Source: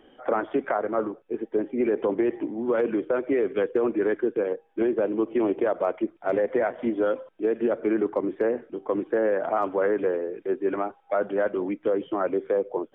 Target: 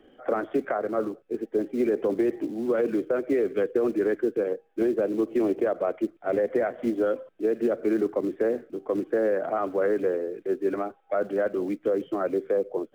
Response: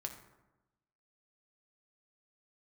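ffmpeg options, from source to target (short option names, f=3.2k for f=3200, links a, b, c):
-filter_complex "[0:a]highshelf=f=2.6k:g=-7.5,acrossover=split=230|1200[a][b][c];[a]acrusher=bits=4:mode=log:mix=0:aa=0.000001[d];[d][b][c]amix=inputs=3:normalize=0,equalizer=f=930:t=o:w=0.37:g=-9"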